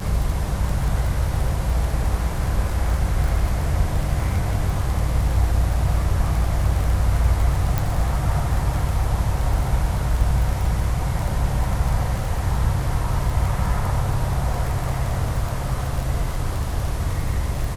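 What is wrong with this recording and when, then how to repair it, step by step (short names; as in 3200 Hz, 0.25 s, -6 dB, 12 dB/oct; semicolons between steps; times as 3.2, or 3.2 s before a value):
crackle 24/s -24 dBFS
7.78 pop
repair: de-click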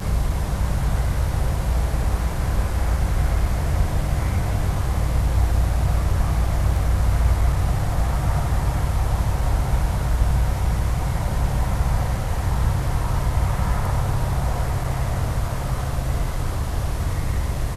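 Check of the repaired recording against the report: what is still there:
none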